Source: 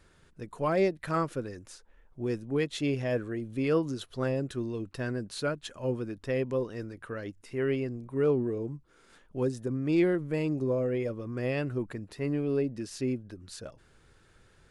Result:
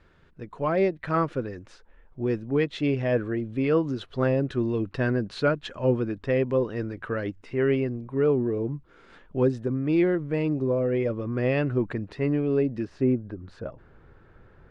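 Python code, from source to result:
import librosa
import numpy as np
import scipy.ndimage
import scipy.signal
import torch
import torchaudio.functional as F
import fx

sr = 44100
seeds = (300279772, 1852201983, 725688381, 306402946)

y = fx.rider(x, sr, range_db=3, speed_s=0.5)
y = fx.lowpass(y, sr, hz=fx.steps((0.0, 3100.0), (12.85, 1400.0)), slope=12)
y = y * 10.0 ** (5.5 / 20.0)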